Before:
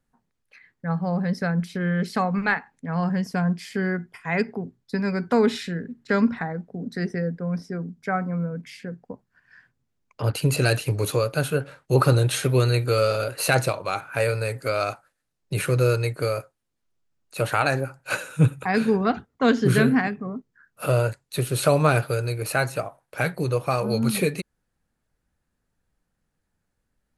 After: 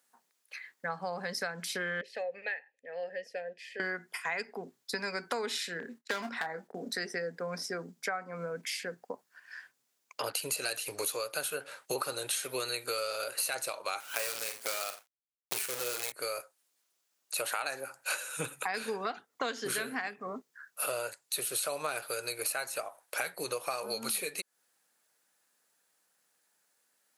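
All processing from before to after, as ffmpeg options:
ffmpeg -i in.wav -filter_complex "[0:a]asettb=1/sr,asplit=3[link_01][link_02][link_03];[link_01]atrim=end=2.014[link_04];[link_02]atrim=start=2.01:end=3.8,asetpts=PTS-STARTPTS,afade=type=in:duration=0.004:curve=qsin,afade=type=out:start_time=1.786:duration=0.004:curve=qsin,asplit=3[link_05][link_06][link_07];[link_05]bandpass=frequency=530:width_type=q:width=8,volume=0dB[link_08];[link_06]bandpass=frequency=1840:width_type=q:width=8,volume=-6dB[link_09];[link_07]bandpass=frequency=2480:width_type=q:width=8,volume=-9dB[link_10];[link_08][link_09][link_10]amix=inputs=3:normalize=0,equalizer=frequency=1400:width_type=o:width=0.37:gain=-8.5[link_11];[link_03]atrim=start=3.796[link_12];[link_04][link_11]acrossfade=duration=0.004:curve1=hsin:curve2=qsin[link_13];[link_13][link_12]acrossfade=duration=0.004:curve1=qsin:curve2=hsin,asettb=1/sr,asplit=3[link_14][link_15][link_16];[link_14]atrim=end=5.804[link_17];[link_15]atrim=start=5.8:end=6.93,asetpts=PTS-STARTPTS,afade=type=in:duration=0.004:curve=qsin,afade=type=out:start_time=1.126:duration=0.004:curve=qsin,agate=range=-27dB:threshold=-49dB:ratio=16:release=100:detection=peak,volume=17.5dB,asoftclip=hard,volume=-17.5dB,asplit=2[link_18][link_19];[link_19]adelay=26,volume=-9.5dB[link_20];[link_18][link_20]amix=inputs=2:normalize=0,atrim=end_sample=49833[link_21];[link_16]atrim=start=6.926[link_22];[link_17][link_21]acrossfade=duration=0.004:curve1=hsin:curve2=qsin[link_23];[link_23][link_22]acrossfade=duration=0.004:curve1=qsin:curve2=hsin,asettb=1/sr,asplit=3[link_24][link_25][link_26];[link_24]atrim=end=14.004[link_27];[link_25]atrim=start=14:end=16.12,asetpts=PTS-STARTPTS,afade=type=in:duration=0.004:curve=qsin,afade=type=out:start_time=2.116:duration=0.004:curve=qsin,acrusher=bits=5:dc=4:mix=0:aa=0.000001,aecho=1:1:41|53|89:0.282|0.237|0.106,atrim=end_sample=93492[link_28];[link_26]atrim=start=16.116[link_29];[link_27][link_28]acrossfade=duration=0.004:curve1=hsin:curve2=qsin[link_30];[link_30][link_29]acrossfade=duration=0.004:curve1=qsin:curve2=hsin,highpass=530,highshelf=frequency=3700:gain=12,acompressor=threshold=-36dB:ratio=6,volume=3.5dB" out.wav

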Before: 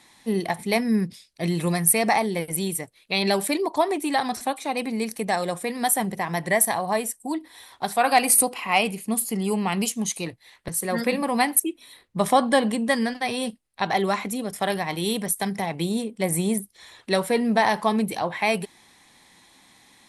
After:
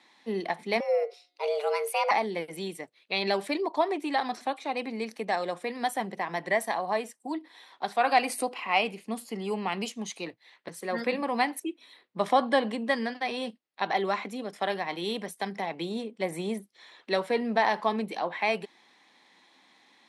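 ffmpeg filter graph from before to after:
ffmpeg -i in.wav -filter_complex "[0:a]asettb=1/sr,asplit=3[link_01][link_02][link_03];[link_01]atrim=end=0.804[link_04];[link_02]atrim=start=0.8:end=2.11,asetpts=PTS-STARTPTS,afade=type=in:duration=0.004:curve=qsin,afade=type=out:start_time=1.306:duration=0.004:curve=qsin,afreqshift=290,bandreject=frequency=179.2:width_type=h:width=4,bandreject=frequency=358.4:width_type=h:width=4,bandreject=frequency=537.6:width_type=h:width=4,bandreject=frequency=716.8:width_type=h:width=4,bandreject=frequency=896:width_type=h:width=4,bandreject=frequency=1075.2:width_type=h:width=4,bandreject=frequency=1254.4:width_type=h:width=4,bandreject=frequency=1433.6:width_type=h:width=4,bandreject=frequency=1612.8:width_type=h:width=4,bandreject=frequency=1792:width_type=h:width=4,bandreject=frequency=1971.2:width_type=h:width=4,bandreject=frequency=2150.4:width_type=h:width=4,bandreject=frequency=2329.6:width_type=h:width=4,bandreject=frequency=2508.8:width_type=h:width=4,bandreject=frequency=2688:width_type=h:width=4,bandreject=frequency=2867.2:width_type=h:width=4,bandreject=frequency=3046.4:width_type=h:width=4,bandreject=frequency=3225.6:width_type=h:width=4,bandreject=frequency=3404.8:width_type=h:width=4,bandreject=frequency=3584:width_type=h:width=4,bandreject=frequency=3763.2:width_type=h:width=4,bandreject=frequency=3942.4:width_type=h:width=4,bandreject=frequency=4121.6:width_type=h:width=4,bandreject=frequency=4300.8:width_type=h:width=4,bandreject=frequency=4480:width_type=h:width=4,bandreject=frequency=4659.2:width_type=h:width=4,bandreject=frequency=4838.4:width_type=h:width=4[link_05];[link_03]atrim=start=2.106[link_06];[link_04][link_05]acrossfade=duration=0.004:curve1=hsin:curve2=qsin[link_07];[link_07][link_06]acrossfade=duration=0.004:curve1=qsin:curve2=hsin,highpass=100,acrossover=split=210 5400:gain=0.0794 1 0.1[link_08][link_09][link_10];[link_08][link_09][link_10]amix=inputs=3:normalize=0,volume=-4dB" out.wav

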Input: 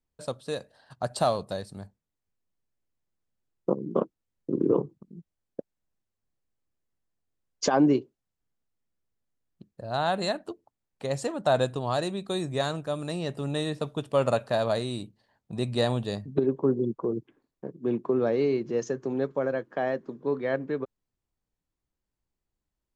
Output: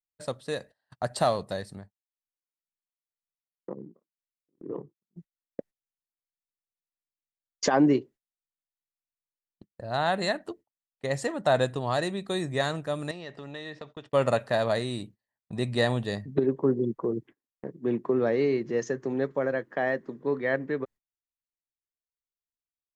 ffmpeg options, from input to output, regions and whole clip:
ffmpeg -i in.wav -filter_complex "[0:a]asettb=1/sr,asplit=3[link_01][link_02][link_03];[link_01]atrim=end=1.754[link_04];[link_02]atrim=start=1.75:end=5.16,asetpts=PTS-STARTPTS,afade=type=in:duration=0.004:curve=qsin,afade=type=out:start_time=3.406:duration=0.004:curve=qsin,lowpass=frequency=3300:poles=1,acompressor=threshold=-33dB:ratio=3:attack=3.2:release=140:knee=1:detection=peak,aeval=exprs='val(0)*pow(10,-19*(0.5-0.5*cos(2*PI*2*n/s))/20)':channel_layout=same[link_05];[link_03]atrim=start=5.156[link_06];[link_04][link_05]acrossfade=duration=0.004:curve1=hsin:curve2=qsin[link_07];[link_07][link_06]acrossfade=duration=0.004:curve1=qsin:curve2=hsin,asettb=1/sr,asplit=3[link_08][link_09][link_10];[link_08]atrim=end=13.114[link_11];[link_09]atrim=start=13.11:end=14.13,asetpts=PTS-STARTPTS,afade=type=in:duration=0.004:curve=qsin,afade=type=out:start_time=1.016:duration=0.004:curve=qsin,lowpass=frequency=5800:width=0.5412,lowpass=frequency=5800:width=1.3066,lowshelf=frequency=270:gain=-10.5,acompressor=threshold=-38dB:ratio=3:attack=3.2:release=140:knee=1:detection=peak[link_12];[link_10]atrim=start=14.126[link_13];[link_11][link_12]acrossfade=duration=0.004:curve1=hsin:curve2=qsin[link_14];[link_14][link_13]acrossfade=duration=0.004:curve1=qsin:curve2=hsin,agate=range=-25dB:threshold=-47dB:ratio=16:detection=peak,equalizer=frequency=1900:width=4.8:gain=10" out.wav

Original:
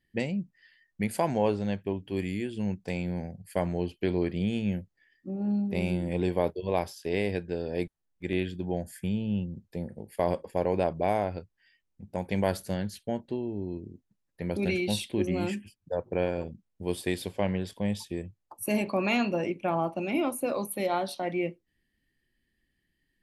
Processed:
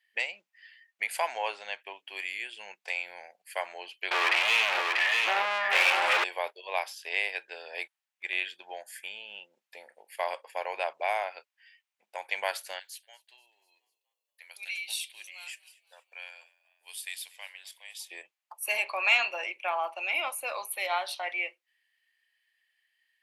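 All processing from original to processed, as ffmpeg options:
ffmpeg -i in.wav -filter_complex "[0:a]asettb=1/sr,asplit=3[link_01][link_02][link_03];[link_01]atrim=end=4.114[link_04];[link_02]atrim=start=4.11:end=6.24,asetpts=PTS-STARTPTS,afade=type=in:duration=0.004:curve=qsin,afade=type=out:start_time=2.126:duration=0.004:curve=qsin,asplit=2[link_05][link_06];[link_06]highpass=frequency=720:poles=1,volume=41dB,asoftclip=type=tanh:threshold=-14.5dB[link_07];[link_05][link_07]amix=inputs=2:normalize=0,lowpass=frequency=2300:poles=1,volume=-6dB,aecho=1:1:639:0.668,atrim=end_sample=93933[link_08];[link_03]atrim=start=6.236[link_09];[link_04][link_08]acrossfade=duration=0.004:curve1=hsin:curve2=qsin[link_10];[link_10][link_09]acrossfade=duration=0.004:curve1=qsin:curve2=hsin,asettb=1/sr,asplit=3[link_11][link_12][link_13];[link_11]atrim=end=12.794[link_14];[link_12]atrim=start=12.79:end=18.09,asetpts=PTS-STARTPTS,afade=type=in:duration=0.004:curve=qsin,afade=type=out:start_time=5.296:duration=0.004:curve=qsin,aderivative,asplit=5[link_15][link_16][link_17][link_18][link_19];[link_16]adelay=242,afreqshift=54,volume=-23dB[link_20];[link_17]adelay=484,afreqshift=108,volume=-27.7dB[link_21];[link_18]adelay=726,afreqshift=162,volume=-32.5dB[link_22];[link_19]adelay=968,afreqshift=216,volume=-37.2dB[link_23];[link_15][link_20][link_21][link_22][link_23]amix=inputs=5:normalize=0,atrim=end_sample=233730[link_24];[link_13]atrim=start=18.086[link_25];[link_14][link_24]acrossfade=duration=0.004:curve1=hsin:curve2=qsin[link_26];[link_26][link_25]acrossfade=duration=0.004:curve1=qsin:curve2=hsin,highpass=frequency=730:width=0.5412,highpass=frequency=730:width=1.3066,equalizer=frequency=2500:width=1.3:gain=8.5,acontrast=77,volume=-6dB" out.wav

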